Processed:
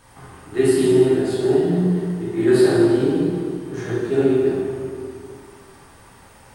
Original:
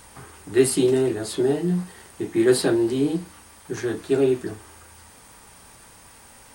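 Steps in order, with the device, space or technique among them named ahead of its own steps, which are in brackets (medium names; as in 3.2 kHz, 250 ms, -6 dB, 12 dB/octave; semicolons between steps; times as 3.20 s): swimming-pool hall (reverberation RT60 2.2 s, pre-delay 7 ms, DRR -7 dB; treble shelf 3.5 kHz -8 dB); trim -4 dB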